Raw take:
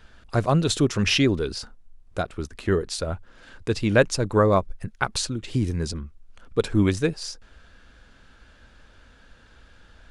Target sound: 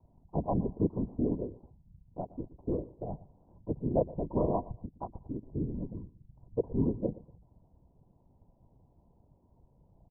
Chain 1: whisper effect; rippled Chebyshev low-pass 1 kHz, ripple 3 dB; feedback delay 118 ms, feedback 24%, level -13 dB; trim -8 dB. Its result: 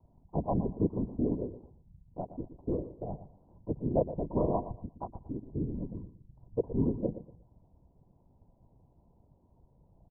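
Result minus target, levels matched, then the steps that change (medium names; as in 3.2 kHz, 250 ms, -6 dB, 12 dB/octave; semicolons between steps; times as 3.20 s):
echo-to-direct +6.5 dB
change: feedback delay 118 ms, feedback 24%, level -19.5 dB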